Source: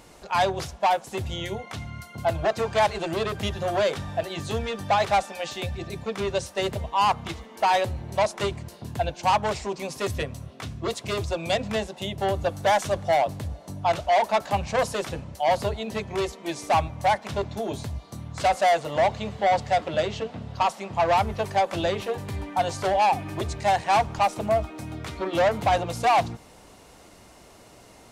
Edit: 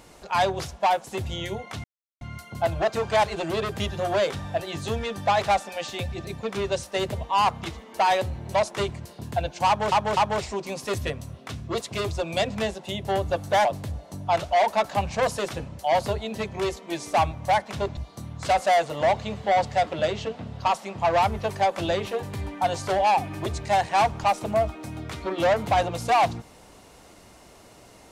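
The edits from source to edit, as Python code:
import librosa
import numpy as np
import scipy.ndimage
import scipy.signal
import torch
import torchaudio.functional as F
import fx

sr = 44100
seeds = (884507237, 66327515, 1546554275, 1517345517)

y = fx.edit(x, sr, fx.insert_silence(at_s=1.84, length_s=0.37),
    fx.repeat(start_s=9.3, length_s=0.25, count=3),
    fx.cut(start_s=12.78, length_s=0.43),
    fx.cut(start_s=17.53, length_s=0.39), tone=tone)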